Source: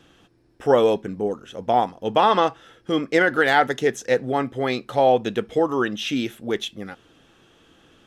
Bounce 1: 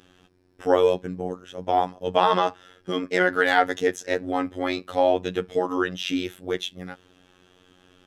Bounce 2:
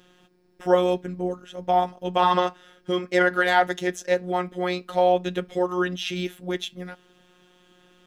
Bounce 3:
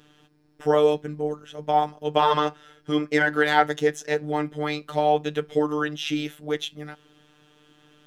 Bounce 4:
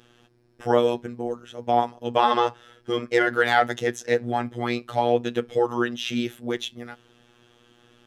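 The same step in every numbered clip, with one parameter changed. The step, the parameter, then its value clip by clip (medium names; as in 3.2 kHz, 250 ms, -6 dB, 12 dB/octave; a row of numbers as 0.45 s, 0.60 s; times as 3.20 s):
robot voice, frequency: 91 Hz, 180 Hz, 150 Hz, 120 Hz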